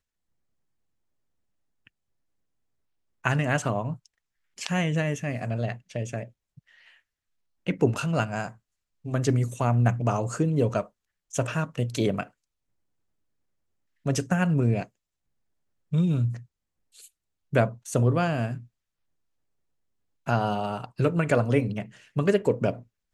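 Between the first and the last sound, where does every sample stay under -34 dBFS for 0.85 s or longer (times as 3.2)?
6.23–7.67
12.23–14.06
14.83–15.93
16.37–17.53
18.58–20.27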